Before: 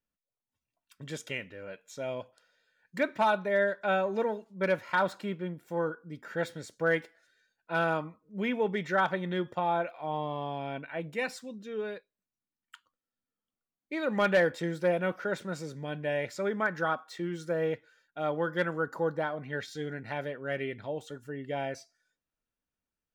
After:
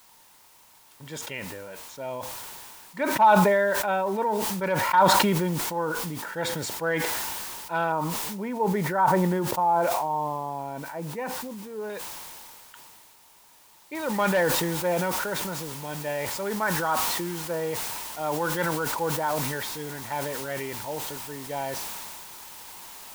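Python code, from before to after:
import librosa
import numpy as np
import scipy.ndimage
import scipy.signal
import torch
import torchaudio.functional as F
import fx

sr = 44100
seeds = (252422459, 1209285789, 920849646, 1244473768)

y = fx.lowpass(x, sr, hz=fx.line((1.39, 3700.0), (4.85, 8000.0)), slope=6, at=(1.39, 4.85), fade=0.02)
y = fx.lowpass(y, sr, hz=1400.0, slope=12, at=(7.92, 11.9))
y = fx.noise_floor_step(y, sr, seeds[0], at_s=13.95, before_db=-55, after_db=-43, tilt_db=0.0)
y = fx.peak_eq(y, sr, hz=920.0, db=13.0, octaves=0.37)
y = fx.sustainer(y, sr, db_per_s=21.0)
y = y * 10.0 ** (-1.0 / 20.0)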